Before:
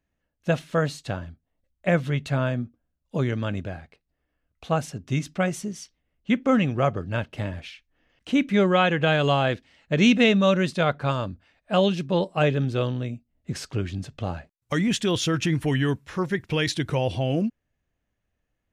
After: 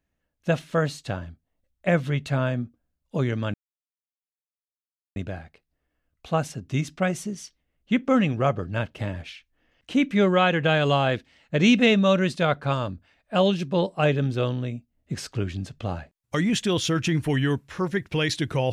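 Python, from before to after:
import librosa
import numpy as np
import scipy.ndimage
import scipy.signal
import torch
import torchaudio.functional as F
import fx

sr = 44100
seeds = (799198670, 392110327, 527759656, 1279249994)

y = fx.edit(x, sr, fx.insert_silence(at_s=3.54, length_s=1.62), tone=tone)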